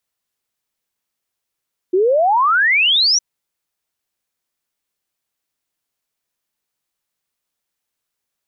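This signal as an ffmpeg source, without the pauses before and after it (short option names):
-f lavfi -i "aevalsrc='0.282*clip(min(t,1.26-t)/0.01,0,1)*sin(2*PI*350*1.26/log(6000/350)*(exp(log(6000/350)*t/1.26)-1))':d=1.26:s=44100"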